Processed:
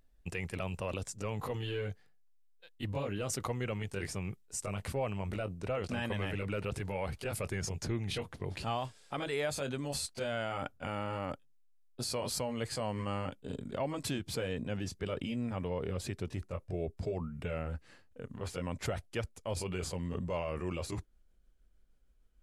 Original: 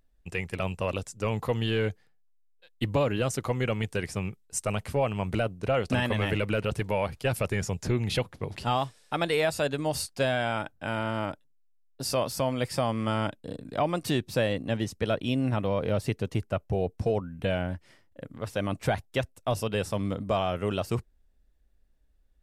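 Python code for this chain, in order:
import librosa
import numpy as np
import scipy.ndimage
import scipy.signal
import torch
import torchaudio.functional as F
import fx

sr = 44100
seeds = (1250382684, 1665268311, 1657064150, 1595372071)

p1 = fx.pitch_glide(x, sr, semitones=-2.5, runs='starting unshifted')
p2 = fx.over_compress(p1, sr, threshold_db=-36.0, ratio=-0.5)
p3 = p1 + F.gain(torch.from_numpy(p2), -2.0).numpy()
y = F.gain(torch.from_numpy(p3), -8.5).numpy()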